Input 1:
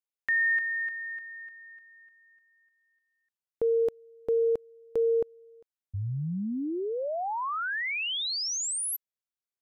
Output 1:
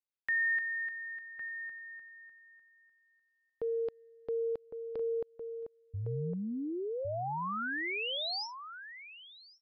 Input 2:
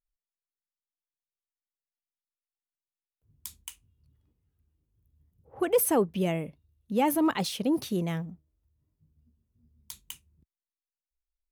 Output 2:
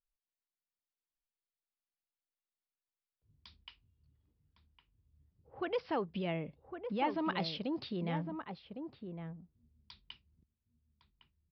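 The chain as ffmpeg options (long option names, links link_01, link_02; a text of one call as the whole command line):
ffmpeg -i in.wav -filter_complex "[0:a]acrossover=split=740[link_01][link_02];[link_01]alimiter=level_in=2.5dB:limit=-24dB:level=0:latency=1:release=119,volume=-2.5dB[link_03];[link_03][link_02]amix=inputs=2:normalize=0,asplit=2[link_04][link_05];[link_05]adelay=1108,volume=-7dB,highshelf=frequency=4000:gain=-24.9[link_06];[link_04][link_06]amix=inputs=2:normalize=0,aresample=11025,aresample=44100,volume=-5dB" out.wav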